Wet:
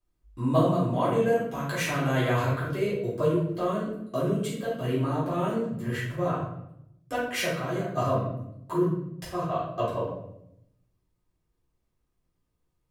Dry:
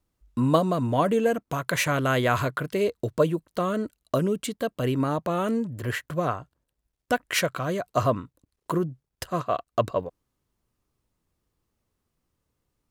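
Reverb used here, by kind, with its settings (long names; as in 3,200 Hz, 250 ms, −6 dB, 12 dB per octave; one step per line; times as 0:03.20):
rectangular room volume 190 cubic metres, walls mixed, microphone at 3.8 metres
level −15 dB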